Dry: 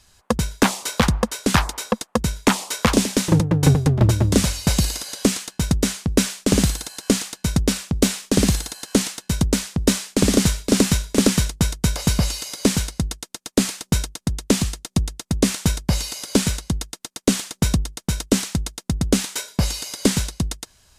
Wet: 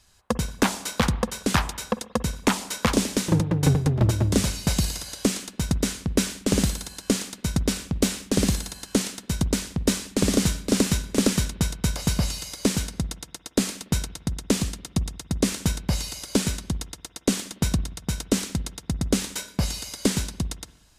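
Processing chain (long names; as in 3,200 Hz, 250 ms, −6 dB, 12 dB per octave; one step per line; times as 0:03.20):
spring reverb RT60 1 s, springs 47/59 ms, chirp 70 ms, DRR 15.5 dB
level −4.5 dB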